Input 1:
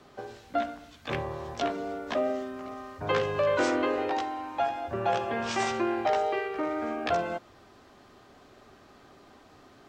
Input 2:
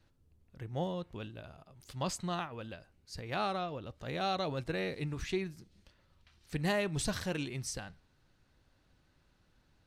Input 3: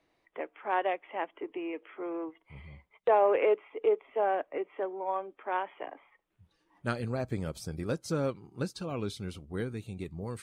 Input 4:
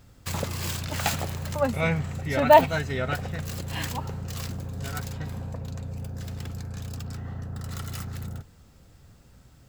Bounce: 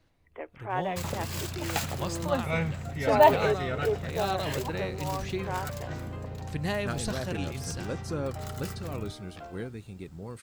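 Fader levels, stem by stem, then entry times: −18.0, +0.5, −2.5, −4.0 decibels; 2.30, 0.00, 0.00, 0.70 seconds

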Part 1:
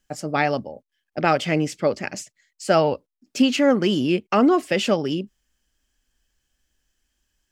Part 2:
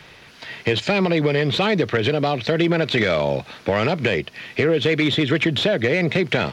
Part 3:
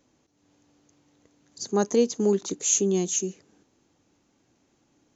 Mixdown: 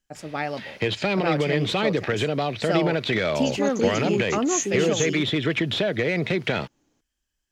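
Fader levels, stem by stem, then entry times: −7.5, −4.5, −3.5 decibels; 0.00, 0.15, 1.85 seconds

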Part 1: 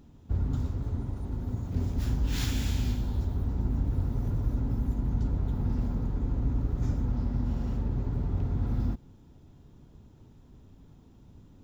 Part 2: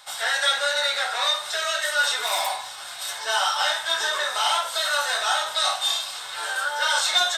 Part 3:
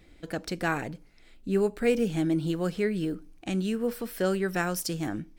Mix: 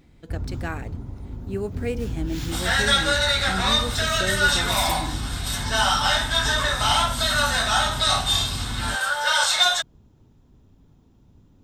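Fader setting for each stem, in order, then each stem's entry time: −1.5, +2.0, −4.0 decibels; 0.00, 2.45, 0.00 seconds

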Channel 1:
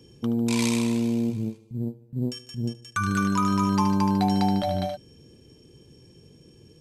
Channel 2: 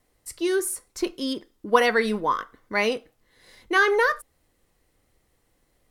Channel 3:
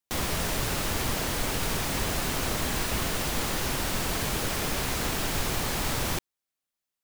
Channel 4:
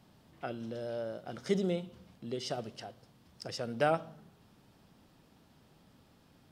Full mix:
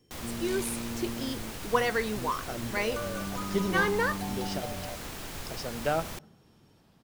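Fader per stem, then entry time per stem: −13.5, −7.5, −11.0, 0.0 decibels; 0.00, 0.00, 0.00, 2.05 seconds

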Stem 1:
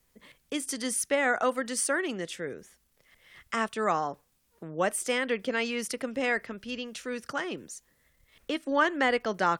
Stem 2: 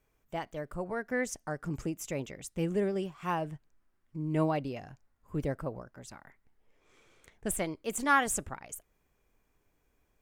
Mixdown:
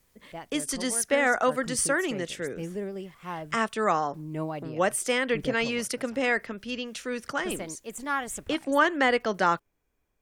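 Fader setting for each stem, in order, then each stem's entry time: +2.5, −4.0 decibels; 0.00, 0.00 seconds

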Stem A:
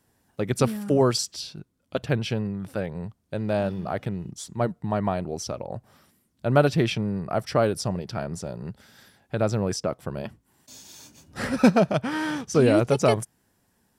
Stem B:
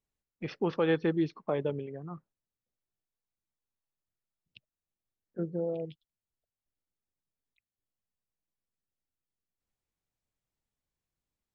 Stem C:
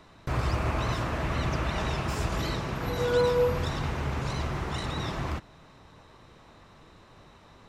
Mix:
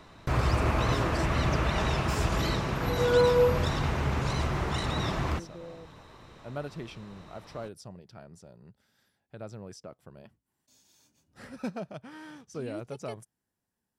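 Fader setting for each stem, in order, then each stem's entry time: −18.0, −12.0, +2.0 decibels; 0.00, 0.00, 0.00 seconds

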